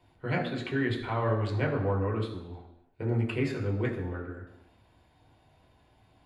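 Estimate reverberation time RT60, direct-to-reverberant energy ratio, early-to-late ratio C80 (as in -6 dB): 0.85 s, -1.0 dB, 9.5 dB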